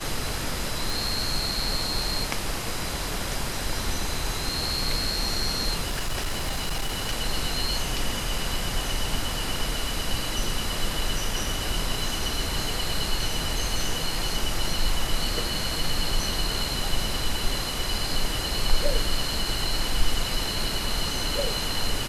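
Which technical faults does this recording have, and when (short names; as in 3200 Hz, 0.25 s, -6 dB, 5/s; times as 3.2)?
0.9 pop
5.88–7.13 clipped -23 dBFS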